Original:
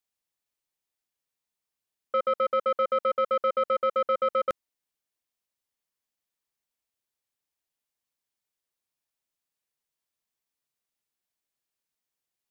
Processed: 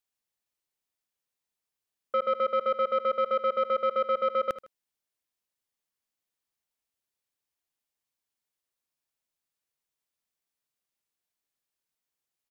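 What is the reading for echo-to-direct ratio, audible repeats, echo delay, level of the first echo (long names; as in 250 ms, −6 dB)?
−14.0 dB, 2, 78 ms, −14.5 dB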